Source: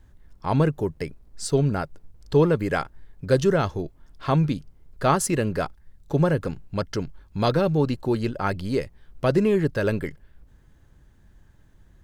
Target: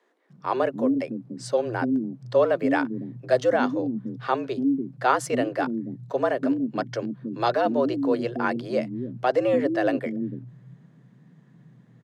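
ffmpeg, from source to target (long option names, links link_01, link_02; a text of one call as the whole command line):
ffmpeg -i in.wav -filter_complex "[0:a]aemphasis=mode=reproduction:type=50fm,acrossover=split=220[link_01][link_02];[link_01]adelay=290[link_03];[link_03][link_02]amix=inputs=2:normalize=0,afreqshift=120" out.wav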